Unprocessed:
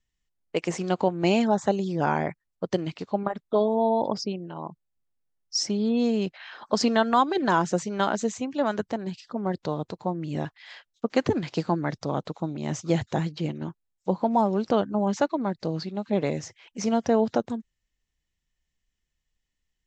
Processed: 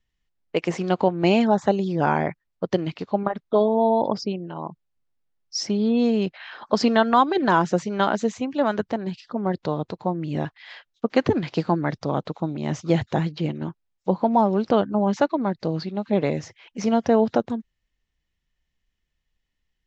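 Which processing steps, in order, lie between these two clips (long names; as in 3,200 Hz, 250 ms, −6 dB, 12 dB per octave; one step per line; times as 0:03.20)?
low-pass filter 4,600 Hz 12 dB per octave
level +3.5 dB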